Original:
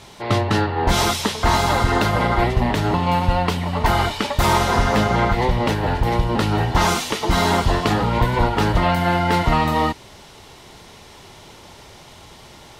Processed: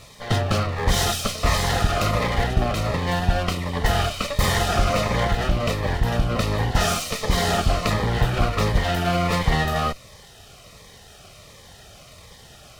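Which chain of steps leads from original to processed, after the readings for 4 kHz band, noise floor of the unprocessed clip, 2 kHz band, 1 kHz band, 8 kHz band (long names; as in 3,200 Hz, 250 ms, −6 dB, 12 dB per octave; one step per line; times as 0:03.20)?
−1.5 dB, −44 dBFS, −3.0 dB, −6.0 dB, 0.0 dB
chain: lower of the sound and its delayed copy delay 1.6 ms
phaser whose notches keep moving one way falling 1.4 Hz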